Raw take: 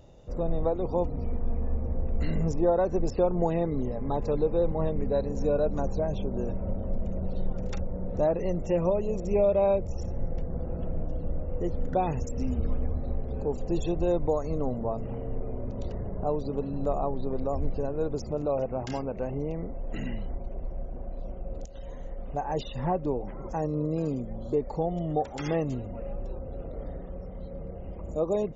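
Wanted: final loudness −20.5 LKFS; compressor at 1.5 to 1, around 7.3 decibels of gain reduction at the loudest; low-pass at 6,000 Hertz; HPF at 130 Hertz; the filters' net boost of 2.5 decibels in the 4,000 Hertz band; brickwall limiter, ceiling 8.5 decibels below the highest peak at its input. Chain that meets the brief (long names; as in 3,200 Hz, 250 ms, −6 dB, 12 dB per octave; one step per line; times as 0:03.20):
high-pass filter 130 Hz
low-pass filter 6,000 Hz
parametric band 4,000 Hz +4 dB
downward compressor 1.5 to 1, threshold −41 dBFS
level +19.5 dB
brickwall limiter −9.5 dBFS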